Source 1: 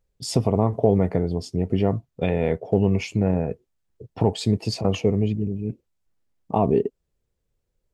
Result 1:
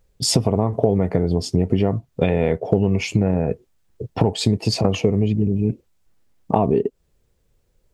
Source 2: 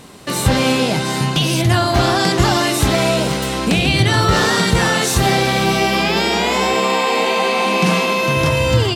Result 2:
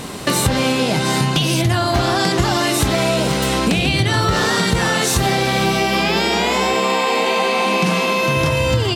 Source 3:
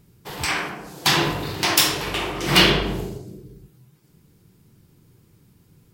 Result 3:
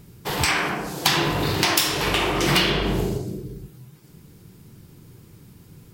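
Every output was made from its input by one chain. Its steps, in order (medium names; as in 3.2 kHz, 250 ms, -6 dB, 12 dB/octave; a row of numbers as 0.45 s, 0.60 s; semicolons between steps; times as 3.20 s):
compression 5:1, threshold -26 dBFS; peak normalisation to -1.5 dBFS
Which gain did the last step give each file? +11.5 dB, +10.5 dB, +8.0 dB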